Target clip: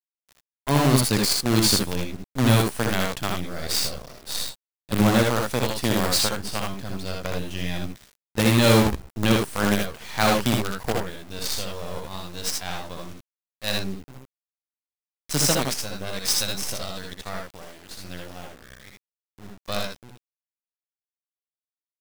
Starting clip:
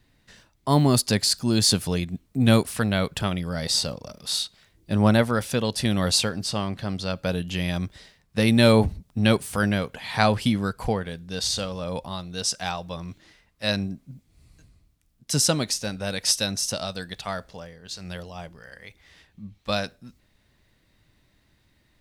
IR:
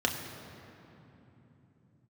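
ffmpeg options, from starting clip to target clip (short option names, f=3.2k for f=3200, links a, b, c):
-filter_complex "[0:a]acrusher=bits=4:dc=4:mix=0:aa=0.000001,asplit=2[a][b];[b]aecho=0:1:63|78:0.562|0.631[c];[a][c]amix=inputs=2:normalize=0,volume=-2dB"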